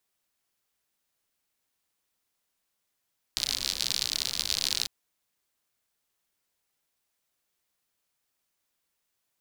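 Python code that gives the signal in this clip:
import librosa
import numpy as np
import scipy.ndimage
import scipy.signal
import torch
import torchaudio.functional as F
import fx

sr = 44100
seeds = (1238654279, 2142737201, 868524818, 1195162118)

y = fx.rain(sr, seeds[0], length_s=1.5, drops_per_s=75.0, hz=4300.0, bed_db=-15.5)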